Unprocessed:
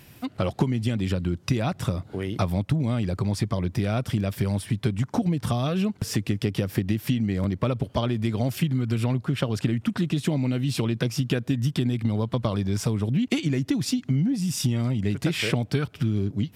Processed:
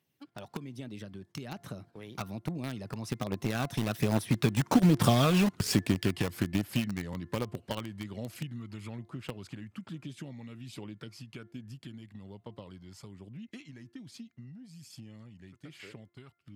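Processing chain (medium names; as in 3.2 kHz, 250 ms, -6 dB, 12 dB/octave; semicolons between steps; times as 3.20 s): Doppler pass-by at 5.04 s, 31 m/s, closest 23 m; high-pass 76 Hz 12 dB/octave; gate -51 dBFS, range -11 dB; bass shelf 140 Hz -10.5 dB; de-hum 347.4 Hz, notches 6; in parallel at -5.5 dB: bit crusher 5-bit; on the sum: phaser 1.2 Hz, delay 1.2 ms, feedback 31%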